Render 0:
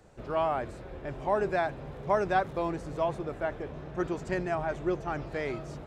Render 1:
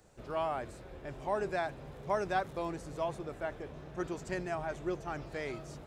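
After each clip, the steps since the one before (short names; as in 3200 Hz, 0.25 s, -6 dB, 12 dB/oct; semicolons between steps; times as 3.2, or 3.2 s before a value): high shelf 4600 Hz +10.5 dB; gain -6 dB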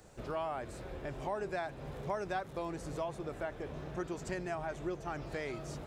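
compressor 2.5:1, threshold -43 dBFS, peak gain reduction 11 dB; gain +5 dB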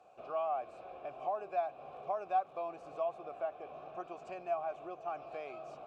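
vowel filter a; gain +8.5 dB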